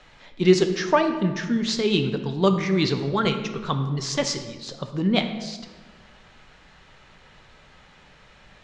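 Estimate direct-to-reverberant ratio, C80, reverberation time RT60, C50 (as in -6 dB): 6.5 dB, 10.5 dB, 1.4 s, 9.0 dB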